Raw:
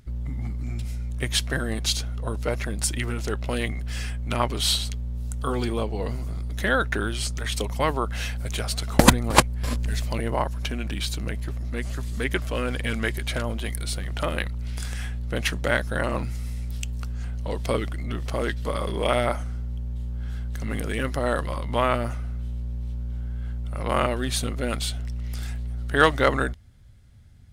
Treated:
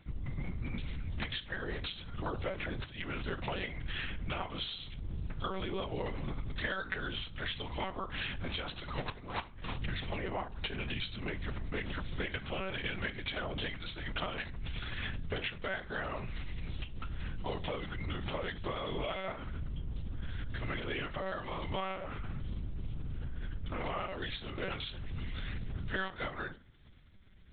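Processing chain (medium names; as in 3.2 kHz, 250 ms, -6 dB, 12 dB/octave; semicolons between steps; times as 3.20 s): tilt EQ +2 dB/octave; compression 20:1, threshold -31 dBFS, peak gain reduction 24.5 dB; comb of notches 270 Hz; integer overflow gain 19 dB; reverberation RT60 0.40 s, pre-delay 15 ms, DRR 11 dB; monotone LPC vocoder at 8 kHz 190 Hz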